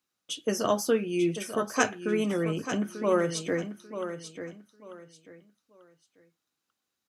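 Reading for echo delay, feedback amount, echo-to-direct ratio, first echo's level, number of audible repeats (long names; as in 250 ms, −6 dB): 891 ms, 26%, −9.5 dB, −10.0 dB, 3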